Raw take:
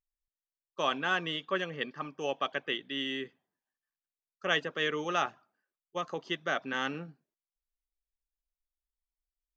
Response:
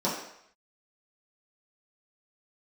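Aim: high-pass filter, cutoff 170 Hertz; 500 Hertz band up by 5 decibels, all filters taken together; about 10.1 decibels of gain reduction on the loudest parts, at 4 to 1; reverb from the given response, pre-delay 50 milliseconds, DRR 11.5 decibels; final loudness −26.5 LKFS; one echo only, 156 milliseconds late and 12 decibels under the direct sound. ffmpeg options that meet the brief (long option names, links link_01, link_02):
-filter_complex "[0:a]highpass=170,equalizer=frequency=500:width_type=o:gain=6,acompressor=threshold=-35dB:ratio=4,aecho=1:1:156:0.251,asplit=2[link_01][link_02];[1:a]atrim=start_sample=2205,adelay=50[link_03];[link_02][link_03]afir=irnorm=-1:irlink=0,volume=-22.5dB[link_04];[link_01][link_04]amix=inputs=2:normalize=0,volume=12dB"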